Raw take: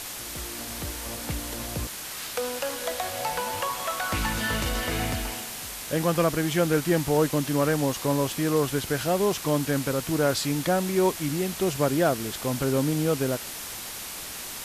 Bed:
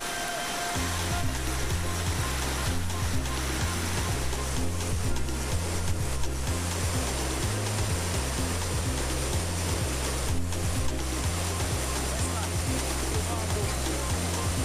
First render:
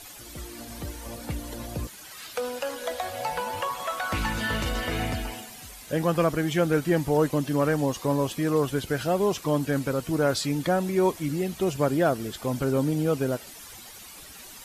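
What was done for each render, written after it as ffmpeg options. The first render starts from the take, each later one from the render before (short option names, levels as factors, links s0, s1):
-af "afftdn=nr=12:nf=-37"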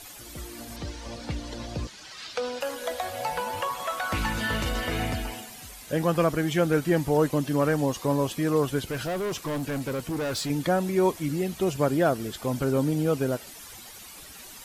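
-filter_complex "[0:a]asettb=1/sr,asplit=3[s0][s1][s2];[s0]atrim=end=0.764[s3];[s1]atrim=start=0.76:end=2.61,asetpts=PTS-STARTPTS,afade=t=in:d=0.004:c=qsin,afade=t=out:st=1.846:d=0.004:c=qsin,lowpass=f=5100:t=q:w=1.5[s4];[s2]atrim=start=2.606[s5];[s3][s4]acrossfade=d=0.004:c1=hsin:c2=qsin[s6];[s6][s5]acrossfade=d=0.004:c1=qsin:c2=hsin,asettb=1/sr,asplit=3[s7][s8][s9];[s7]atrim=end=8.844[s10];[s8]atrim=start=8.84:end=10.5,asetpts=PTS-STARTPTS,afade=t=in:d=0.004:c=qsin,afade=t=out:st=1.656:d=0.004:c=qsin,volume=21.1,asoftclip=hard,volume=0.0473[s11];[s9]atrim=start=10.496[s12];[s10][s11]acrossfade=d=0.004:c1=hsin:c2=qsin[s13];[s13][s12]acrossfade=d=0.004:c1=qsin:c2=hsin"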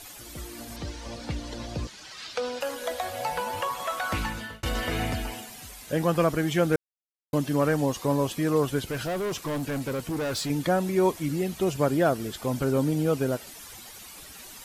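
-filter_complex "[0:a]asplit=4[s0][s1][s2][s3];[s0]atrim=end=4.63,asetpts=PTS-STARTPTS,afade=t=out:st=4.12:d=0.51[s4];[s1]atrim=start=4.63:end=6.76,asetpts=PTS-STARTPTS,afade=t=in:d=0.004:c=hsin,afade=t=out:st=2.126:d=0.004:c=hsin[s5];[s2]atrim=start=6.76:end=7.33,asetpts=PTS-STARTPTS,volume=0[s6];[s3]atrim=start=7.33,asetpts=PTS-STARTPTS,afade=t=in:d=0.004:c=hsin[s7];[s4][s5][s6][s7]concat=n=4:v=0:a=1"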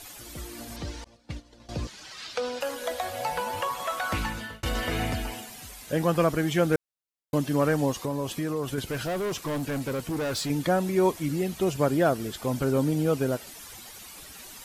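-filter_complex "[0:a]asettb=1/sr,asplit=3[s0][s1][s2];[s0]atrim=end=1.044[s3];[s1]atrim=start=1.04:end=1.69,asetpts=PTS-STARTPTS,afade=t=in:d=0.004:c=qsin,afade=t=out:st=0.646:d=0.004:c=qsin,agate=range=0.0224:threshold=0.0501:ratio=3:release=100:detection=peak[s4];[s2]atrim=start=1.686[s5];[s3][s4]acrossfade=d=0.004:c1=hsin:c2=qsin[s6];[s6][s5]acrossfade=d=0.004:c1=qsin:c2=hsin,asettb=1/sr,asplit=3[s7][s8][s9];[s7]atrim=end=7.944[s10];[s8]atrim=start=7.94:end=8.78,asetpts=PTS-STARTPTS,afade=t=in:d=0.004:c=qsin,afade=t=out:st=0.836:d=0.004:c=qsin,acompressor=threshold=0.0562:ratio=6:attack=3.2:release=140:knee=1:detection=peak[s11];[s9]atrim=start=8.776[s12];[s10][s11]acrossfade=d=0.004:c1=hsin:c2=qsin[s13];[s13][s12]acrossfade=d=0.004:c1=qsin:c2=hsin"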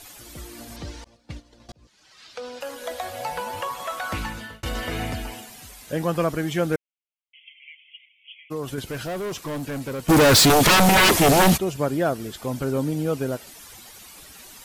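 -filter_complex "[0:a]asplit=3[s0][s1][s2];[s0]afade=t=out:st=6.75:d=0.02[s3];[s1]asuperpass=centerf=2600:order=20:qfactor=2,afade=t=in:st=6.75:d=0.02,afade=t=out:st=8.5:d=0.02[s4];[s2]afade=t=in:st=8.5:d=0.02[s5];[s3][s4][s5]amix=inputs=3:normalize=0,asplit=3[s6][s7][s8];[s6]afade=t=out:st=10.08:d=0.02[s9];[s7]aeval=exprs='0.266*sin(PI/2*7.94*val(0)/0.266)':c=same,afade=t=in:st=10.08:d=0.02,afade=t=out:st=11.56:d=0.02[s10];[s8]afade=t=in:st=11.56:d=0.02[s11];[s9][s10][s11]amix=inputs=3:normalize=0,asplit=2[s12][s13];[s12]atrim=end=1.72,asetpts=PTS-STARTPTS,afade=t=out:st=1.716:d=0.004:c=hsin[s14];[s13]atrim=start=1.72,asetpts=PTS-STARTPTS,afade=t=in:d=1.28[s15];[s14][s15]concat=n=2:v=0:a=1"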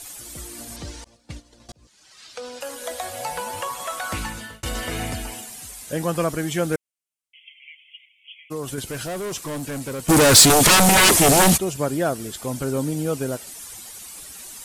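-af "equalizer=f=8900:w=0.93:g=10"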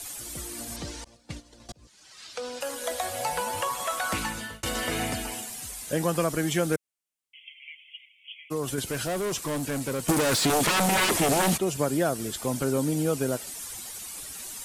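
-filter_complex "[0:a]alimiter=limit=0.282:level=0:latency=1,acrossover=split=140|3800[s0][s1][s2];[s0]acompressor=threshold=0.00891:ratio=4[s3];[s1]acompressor=threshold=0.0891:ratio=4[s4];[s2]acompressor=threshold=0.0355:ratio=4[s5];[s3][s4][s5]amix=inputs=3:normalize=0"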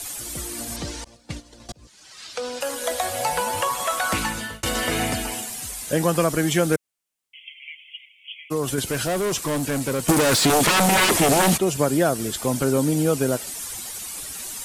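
-af "volume=1.88"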